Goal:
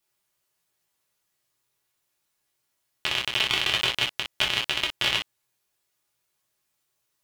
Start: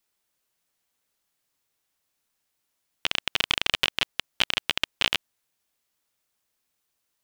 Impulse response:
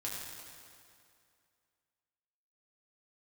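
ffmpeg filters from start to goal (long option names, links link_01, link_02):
-filter_complex "[1:a]atrim=start_sample=2205,atrim=end_sample=3528,asetrate=52920,aresample=44100[link_01];[0:a][link_01]afir=irnorm=-1:irlink=0,volume=4dB"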